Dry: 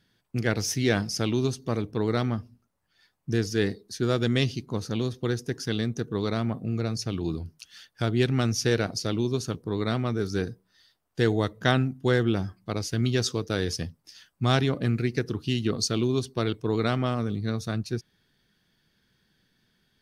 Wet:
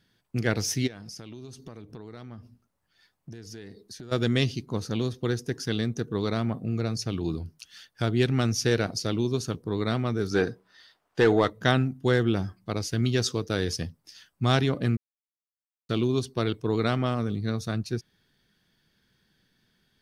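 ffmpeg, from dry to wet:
ffmpeg -i in.wav -filter_complex "[0:a]asplit=3[link_01][link_02][link_03];[link_01]afade=type=out:start_time=0.86:duration=0.02[link_04];[link_02]acompressor=threshold=-38dB:ratio=12:attack=3.2:release=140:knee=1:detection=peak,afade=type=in:start_time=0.86:duration=0.02,afade=type=out:start_time=4.11:duration=0.02[link_05];[link_03]afade=type=in:start_time=4.11:duration=0.02[link_06];[link_04][link_05][link_06]amix=inputs=3:normalize=0,asettb=1/sr,asplit=3[link_07][link_08][link_09];[link_07]atrim=end=10.314[link_10];[link_08]atrim=start=10.31:end=11.5,asetpts=PTS-STARTPTS,afade=type=in:duration=0.004:curve=qsin,afade=type=out:start_time=1.186:duration=0.004:curve=qsin,asplit=2[link_11][link_12];[link_12]highpass=frequency=720:poles=1,volume=18dB,asoftclip=type=tanh:threshold=-8dB[link_13];[link_11][link_13]amix=inputs=2:normalize=0,lowpass=frequency=1800:poles=1,volume=-6dB[link_14];[link_09]atrim=start=11.496[link_15];[link_10][link_14]acrossfade=duration=0.004:curve1=hsin:curve2=qsin[link_16];[link_16][link_15]acrossfade=duration=0.004:curve1=qsin:curve2=hsin,asplit=3[link_17][link_18][link_19];[link_17]atrim=end=14.97,asetpts=PTS-STARTPTS,afade=type=out:start_time=14.966:duration=0.004:curve=hsin[link_20];[link_18]atrim=start=14.97:end=15.89,asetpts=PTS-STARTPTS,volume=0[link_21];[link_19]atrim=start=15.89,asetpts=PTS-STARTPTS,afade=type=in:duration=0.004:curve=hsin[link_22];[link_20][link_21][link_22]concat=n=3:v=0:a=1" out.wav

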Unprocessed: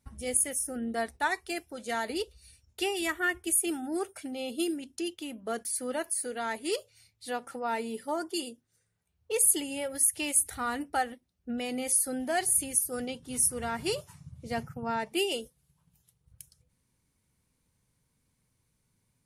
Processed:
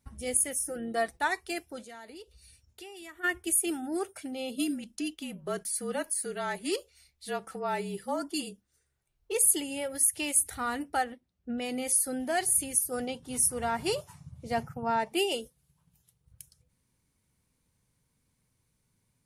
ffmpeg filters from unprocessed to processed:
ffmpeg -i in.wav -filter_complex "[0:a]asettb=1/sr,asplit=3[link_01][link_02][link_03];[link_01]atrim=end=0.664[link_04];[link_02]atrim=start=0.66:end=1.19,asetpts=PTS-STARTPTS,afade=type=in:duration=0.004:curve=qsin,afade=type=out:start_time=0.526:duration=0.004:curve=qsin,aecho=1:1:6:0.65,atrim=end_sample=23373[link_05];[link_03]atrim=start=1.186[link_06];[link_04][link_05]acrossfade=duration=0.004:curve1=hsin:curve2=qsin[link_07];[link_07][link_06]acrossfade=duration=0.004:curve1=qsin:curve2=hsin,asplit=3[link_08][link_09][link_10];[link_08]afade=type=out:start_time=1.83:duration=0.02[link_11];[link_09]acompressor=threshold=-51dB:ratio=2.5:attack=3.2:release=140:knee=1:detection=peak,afade=type=in:start_time=1.83:duration=0.02,afade=type=out:start_time=3.23:duration=0.02[link_12];[link_10]afade=type=in:start_time=3.23:duration=0.02[link_13];[link_11][link_12][link_13]amix=inputs=3:normalize=0,asplit=3[link_14][link_15][link_16];[link_14]afade=type=out:start_time=4.55:duration=0.02[link_17];[link_15]afreqshift=-39,afade=type=in:start_time=4.55:duration=0.02,afade=type=out:start_time=9.33:duration=0.02[link_18];[link_16]afade=type=in:start_time=9.33:duration=0.02[link_19];[link_17][link_18][link_19]amix=inputs=3:normalize=0,asettb=1/sr,asplit=3[link_20][link_21][link_22];[link_20]atrim=end=11.044[link_23];[link_21]atrim=start=11.04:end=11.62,asetpts=PTS-STARTPTS,afade=type=in:duration=0.004:curve=qsin,afade=type=out:start_time=0.576:duration=0.004:curve=qsin,highshelf=frequency=4900:gain=-10[link_24];[link_22]atrim=start=11.616[link_25];[link_23][link_24]acrossfade=duration=0.004:curve1=hsin:curve2=qsin[link_26];[link_26][link_25]acrossfade=duration=0.004:curve1=qsin:curve2=hsin,asettb=1/sr,asplit=3[link_27][link_28][link_29];[link_27]atrim=end=12.914[link_30];[link_28]atrim=start=12.91:end=15.35,asetpts=PTS-STARTPTS,afade=type=in:duration=0.004:curve=qsin,afade=type=out:start_time=2.436:duration=0.004:curve=qsin,equalizer=frequency=800:width=1.5:gain=5.5[link_31];[link_29]atrim=start=15.346[link_32];[link_30][link_31]acrossfade=duration=0.004:curve1=hsin:curve2=qsin[link_33];[link_33][link_32]acrossfade=duration=0.004:curve1=qsin:curve2=hsin" out.wav

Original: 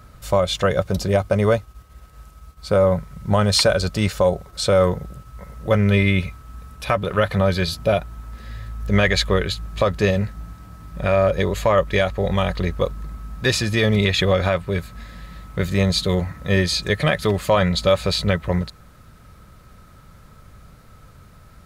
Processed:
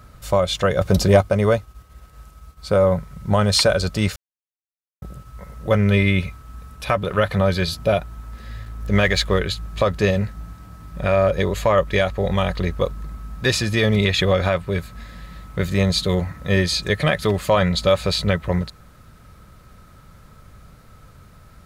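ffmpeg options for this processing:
ffmpeg -i in.wav -filter_complex "[0:a]asettb=1/sr,asplit=3[link_01][link_02][link_03];[link_01]atrim=end=0.814[link_04];[link_02]atrim=start=0.81:end=1.21,asetpts=PTS-STARTPTS,afade=type=in:duration=0.004:curve=qsin,afade=type=out:start_time=0.396:duration=0.004:curve=qsin,acontrast=54[link_05];[link_03]atrim=start=1.206[link_06];[link_04][link_05]acrossfade=duration=0.004:curve1=hsin:curve2=qsin[link_07];[link_07][link_06]acrossfade=duration=0.004:curve1=qsin:curve2=hsin,asettb=1/sr,asplit=3[link_08][link_09][link_10];[link_08]atrim=end=8.634[link_11];[link_09]atrim=start=8.63:end=9.39,asetpts=PTS-STARTPTS,afade=type=in:duration=0.004:curve=qsin,afade=type=out:start_time=0.756:duration=0.004:curve=qsin,aeval=exprs='sgn(val(0))*max(abs(val(0))-0.00708,0)':channel_layout=same[link_12];[link_10]atrim=start=9.386[link_13];[link_11][link_12]acrossfade=duration=0.004:curve1=hsin:curve2=qsin[link_14];[link_14][link_13]acrossfade=duration=0.004:curve1=qsin:curve2=hsin,asplit=3[link_15][link_16][link_17];[link_15]atrim=end=4.16,asetpts=PTS-STARTPTS,afade=type=out:start_time=4.156:duration=0.004:curve=hsin[link_18];[link_16]atrim=start=4.16:end=5.02,asetpts=PTS-STARTPTS,volume=0[link_19];[link_17]atrim=start=5.02,asetpts=PTS-STARTPTS,afade=type=in:duration=0.004:curve=hsin[link_20];[link_18][link_19][link_20]concat=n=3:v=0:a=1" out.wav

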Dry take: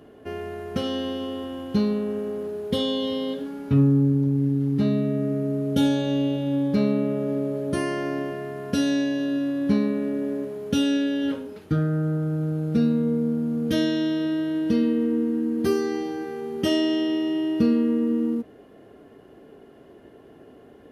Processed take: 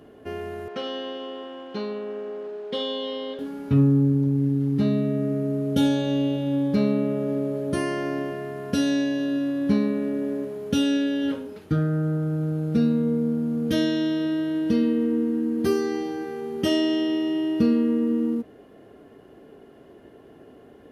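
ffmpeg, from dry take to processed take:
ffmpeg -i in.wav -filter_complex "[0:a]asettb=1/sr,asplit=3[link_01][link_02][link_03];[link_01]atrim=end=0.684[link_04];[link_02]atrim=start=0.68:end=3.39,asetpts=PTS-STARTPTS,afade=type=in:duration=0.004:curve=qsin,afade=type=out:start_time=2.706:duration=0.004:curve=qsin,highpass=420,lowpass=4000[link_05];[link_03]atrim=start=3.386[link_06];[link_04][link_05]acrossfade=duration=0.004:curve1=hsin:curve2=qsin[link_07];[link_07][link_06]acrossfade=duration=0.004:curve1=qsin:curve2=hsin" out.wav

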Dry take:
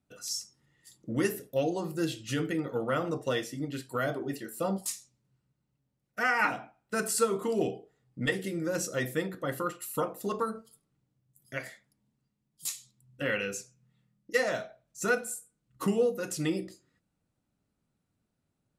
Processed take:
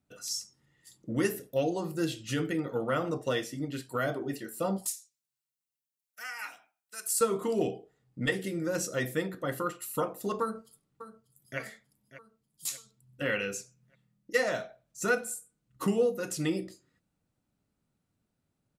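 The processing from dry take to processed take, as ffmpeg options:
ffmpeg -i in.wav -filter_complex "[0:a]asettb=1/sr,asplit=3[link_01][link_02][link_03];[link_01]atrim=end=4.874[link_04];[link_02]atrim=start=4.87:end=7.21,asetpts=PTS-STARTPTS,afade=type=in:duration=0.004:curve=qsin,afade=type=out:start_time=2.336:duration=0.004:curve=qsin,aderivative[link_05];[link_03]atrim=start=7.206[link_06];[link_04][link_05]acrossfade=duration=0.004:curve1=hsin:curve2=qsin[link_07];[link_07][link_06]acrossfade=duration=0.004:curve1=qsin:curve2=hsin,asplit=2[link_08][link_09];[link_09]afade=type=in:start_time=10.41:duration=0.01,afade=type=out:start_time=11.59:duration=0.01,aecho=0:1:590|1180|1770|2360|2950:0.188365|0.0941825|0.0470912|0.0235456|0.0117728[link_10];[link_08][link_10]amix=inputs=2:normalize=0" out.wav

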